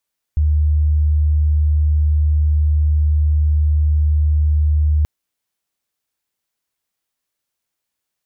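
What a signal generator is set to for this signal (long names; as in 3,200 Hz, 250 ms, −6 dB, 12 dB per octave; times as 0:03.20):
tone sine 75.5 Hz −11.5 dBFS 4.68 s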